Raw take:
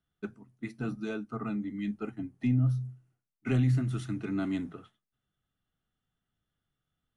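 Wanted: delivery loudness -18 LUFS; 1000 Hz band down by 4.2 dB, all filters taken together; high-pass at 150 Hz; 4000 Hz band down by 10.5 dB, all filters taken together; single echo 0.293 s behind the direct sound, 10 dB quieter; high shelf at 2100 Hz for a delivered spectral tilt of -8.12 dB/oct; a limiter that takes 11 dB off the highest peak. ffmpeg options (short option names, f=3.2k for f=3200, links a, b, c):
-af "highpass=150,equalizer=f=1k:t=o:g=-3.5,highshelf=f=2.1k:g=-6.5,equalizer=f=4k:t=o:g=-7.5,alimiter=level_in=7.5dB:limit=-24dB:level=0:latency=1,volume=-7.5dB,aecho=1:1:293:0.316,volume=22.5dB"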